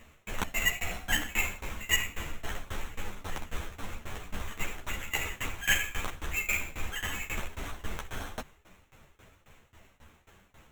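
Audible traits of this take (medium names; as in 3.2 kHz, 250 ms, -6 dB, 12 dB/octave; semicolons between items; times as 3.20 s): aliases and images of a low sample rate 4.8 kHz, jitter 0%; tremolo saw down 3.7 Hz, depth 95%; a shimmering, thickened sound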